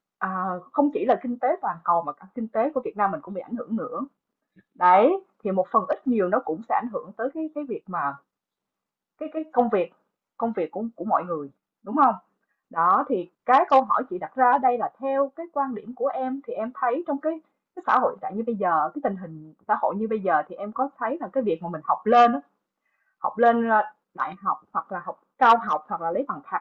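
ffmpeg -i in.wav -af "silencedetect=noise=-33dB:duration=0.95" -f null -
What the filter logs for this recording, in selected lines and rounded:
silence_start: 8.15
silence_end: 9.21 | silence_duration: 1.06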